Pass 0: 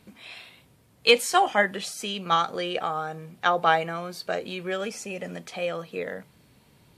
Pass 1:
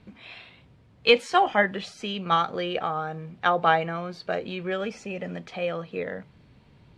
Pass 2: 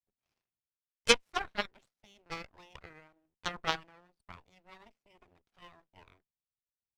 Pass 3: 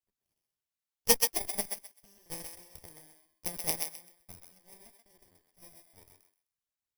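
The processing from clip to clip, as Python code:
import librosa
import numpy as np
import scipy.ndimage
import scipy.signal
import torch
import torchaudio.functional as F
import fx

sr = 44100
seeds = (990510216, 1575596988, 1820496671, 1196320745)

y1 = scipy.signal.sosfilt(scipy.signal.butter(2, 3700.0, 'lowpass', fs=sr, output='sos'), x)
y1 = fx.low_shelf(y1, sr, hz=140.0, db=8.5)
y2 = fx.backlash(y1, sr, play_db=-43.5)
y2 = fx.cheby_harmonics(y2, sr, harmonics=(2, 3, 5, 6), levels_db=(-15, -8, -28, -39), full_scale_db=-5.0)
y3 = fx.bit_reversed(y2, sr, seeds[0], block=32)
y3 = fx.echo_thinned(y3, sr, ms=129, feedback_pct=22, hz=830.0, wet_db=-3.5)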